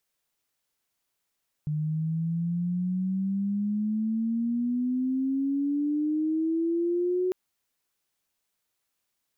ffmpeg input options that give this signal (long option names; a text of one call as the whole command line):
ffmpeg -f lavfi -i "aevalsrc='pow(10,(-25.5+2.5*t/5.65)/20)*sin(2*PI*150*5.65/log(370/150)*(exp(log(370/150)*t/5.65)-1))':duration=5.65:sample_rate=44100" out.wav